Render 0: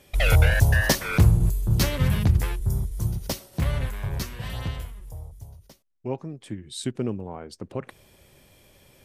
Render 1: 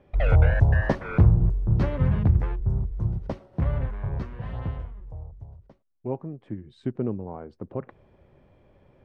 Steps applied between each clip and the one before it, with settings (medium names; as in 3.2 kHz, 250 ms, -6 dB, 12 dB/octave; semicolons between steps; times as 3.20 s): low-pass 1.2 kHz 12 dB/octave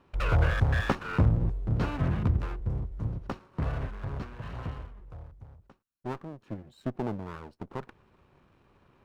comb filter that takes the minimum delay 0.73 ms; bass shelf 200 Hz -7.5 dB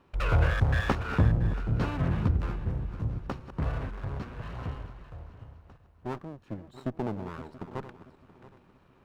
backward echo that repeats 340 ms, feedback 52%, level -12 dB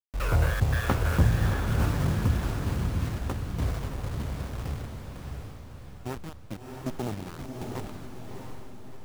send-on-delta sampling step -33.5 dBFS; echo that smears into a reverb 670 ms, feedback 46%, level -3.5 dB